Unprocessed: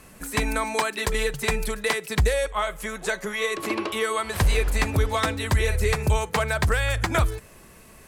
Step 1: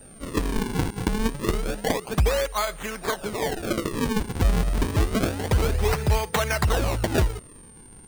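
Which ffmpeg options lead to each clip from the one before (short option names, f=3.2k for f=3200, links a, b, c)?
-af "acrusher=samples=40:mix=1:aa=0.000001:lfo=1:lforange=64:lforate=0.28,aeval=exprs='val(0)+0.00398*sin(2*PI*8900*n/s)':c=same"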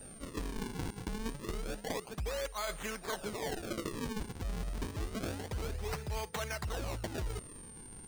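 -af "areverse,acompressor=threshold=-32dB:ratio=6,areverse,equalizer=f=5.7k:t=o:w=1.4:g=3,volume=-3.5dB"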